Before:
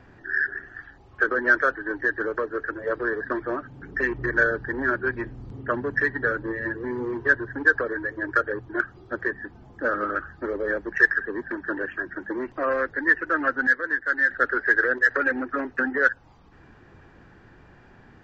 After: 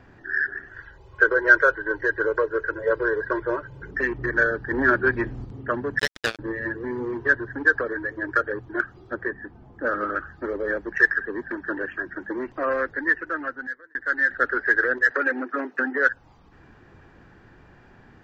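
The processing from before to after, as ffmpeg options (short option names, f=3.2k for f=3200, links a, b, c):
-filter_complex "[0:a]asettb=1/sr,asplit=3[a][b][c];[a]atrim=end=0.714[d];[b]atrim=start=0.71:end=3.91,asetpts=PTS-STARTPTS,afade=t=in:d=0.004:c=qsin,afade=t=out:st=3.196:d=0.004:c=qsin,aecho=1:1:2:0.91,atrim=end_sample=141120[e];[c]atrim=start=3.906[f];[d][e]acrossfade=d=0.004:c1=hsin:c2=qsin[g];[g][f]acrossfade=d=0.004:c1=qsin:c2=hsin,asettb=1/sr,asplit=3[h][i][j];[h]atrim=end=4.714[k];[i]atrim=start=4.71:end=5.45,asetpts=PTS-STARTPTS,afade=t=in:d=0.004:c=qsin,afade=t=out:st=0.736:d=0.004:c=qsin,acontrast=30[l];[j]atrim=start=5.446[m];[k][l]acrossfade=d=0.004:c1=hsin:c2=qsin[n];[n][m]acrossfade=d=0.004:c1=qsin:c2=hsin,asettb=1/sr,asplit=3[o][p][q];[o]atrim=end=5.994[r];[p]atrim=start=5.99:end=6.39,asetpts=PTS-STARTPTS,afade=t=in:d=0.004:c=qsin,afade=t=out:st=0.396:d=0.004:c=qsin,acrusher=bits=2:mix=0:aa=0.5[s];[q]atrim=start=6.386[t];[r][s]acrossfade=d=0.004:c1=hsin:c2=qsin[u];[u][t]acrossfade=d=0.004:c1=qsin:c2=hsin,asettb=1/sr,asplit=3[v][w][x];[v]atrim=end=9.144[y];[w]atrim=start=9.14:end=9.87,asetpts=PTS-STARTPTS,afade=t=in:d=0.004:c=qsin,afade=t=out:st=0.726:d=0.004:c=qsin,lowpass=f=1.9k:p=1[z];[x]atrim=start=9.866[aa];[y][z]acrossfade=d=0.004:c1=hsin:c2=qsin[ab];[ab][aa]acrossfade=d=0.004:c1=qsin:c2=hsin,asettb=1/sr,asplit=3[ac][ad][ae];[ac]atrim=end=15.114[af];[ad]atrim=start=15.11:end=16.09,asetpts=PTS-STARTPTS,afade=t=in:d=0.004:c=qsin,afade=t=out:st=0.976:d=0.004:c=qsin,highpass=f=220:w=0.5412,highpass=f=220:w=1.3066[ag];[ae]atrim=start=16.086[ah];[af][ag]acrossfade=d=0.004:c1=hsin:c2=qsin[ai];[ai][ah]acrossfade=d=0.004:c1=qsin:c2=hsin,asplit=2[aj][ak];[aj]atrim=end=13.95,asetpts=PTS-STARTPTS,afade=t=out:st=12.9:d=1.05[al];[ak]atrim=start=13.95,asetpts=PTS-STARTPTS,afade=t=in:d=0.004:c=hsin[am];[al][am]concat=n=2:v=0:a=1"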